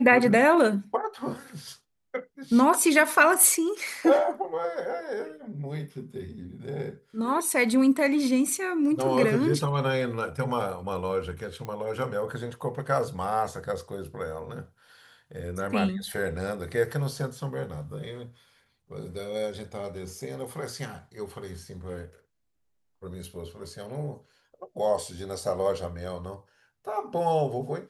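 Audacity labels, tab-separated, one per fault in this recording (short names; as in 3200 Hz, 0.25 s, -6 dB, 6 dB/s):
11.650000	11.650000	pop -23 dBFS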